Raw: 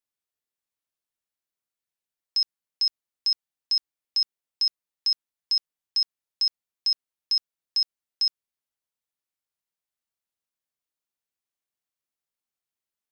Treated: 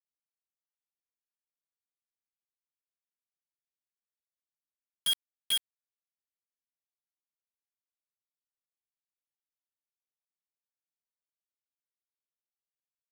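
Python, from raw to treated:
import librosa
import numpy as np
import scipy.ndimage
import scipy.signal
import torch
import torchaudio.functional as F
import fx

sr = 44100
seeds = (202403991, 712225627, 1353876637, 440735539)

y = fx.partial_stretch(x, sr, pct=85)
y = fx.filter_sweep_bandpass(y, sr, from_hz=6500.0, to_hz=300.0, start_s=4.95, end_s=6.57, q=5.8)
y = fx.quant_dither(y, sr, seeds[0], bits=6, dither='none')
y = y * librosa.db_to_amplitude(7.5)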